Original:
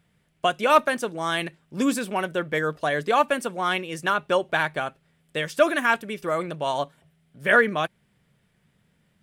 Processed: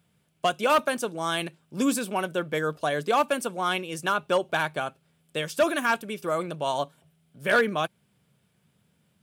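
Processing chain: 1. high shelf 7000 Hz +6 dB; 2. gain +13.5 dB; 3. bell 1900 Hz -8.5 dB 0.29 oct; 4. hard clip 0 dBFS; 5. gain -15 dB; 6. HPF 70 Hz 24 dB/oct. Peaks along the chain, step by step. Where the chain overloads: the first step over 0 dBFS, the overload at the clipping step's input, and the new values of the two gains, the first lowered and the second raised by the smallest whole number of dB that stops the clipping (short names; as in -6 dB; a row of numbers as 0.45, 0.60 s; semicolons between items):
-5.0, +8.5, +9.0, 0.0, -15.0, -12.0 dBFS; step 2, 9.0 dB; step 2 +4.5 dB, step 5 -6 dB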